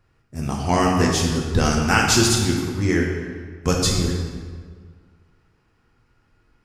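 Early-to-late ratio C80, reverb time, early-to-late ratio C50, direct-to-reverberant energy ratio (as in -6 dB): 3.5 dB, 1.7 s, 2.0 dB, -1.5 dB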